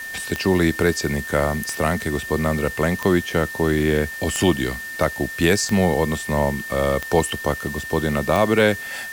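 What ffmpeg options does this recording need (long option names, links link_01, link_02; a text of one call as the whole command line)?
ffmpeg -i in.wav -af "adeclick=threshold=4,bandreject=frequency=1800:width=30,afwtdn=0.01" out.wav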